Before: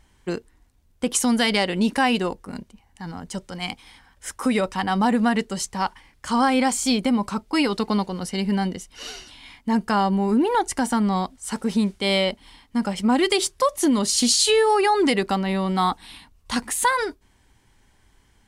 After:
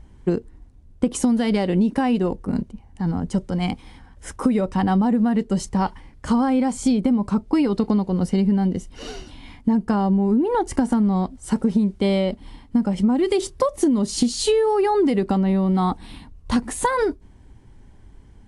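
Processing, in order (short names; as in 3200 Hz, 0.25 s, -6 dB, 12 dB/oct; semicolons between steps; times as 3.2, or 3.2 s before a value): tilt shelf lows +9 dB, about 770 Hz; compressor 12:1, threshold -20 dBFS, peak gain reduction 11.5 dB; gain +4.5 dB; AAC 64 kbps 24000 Hz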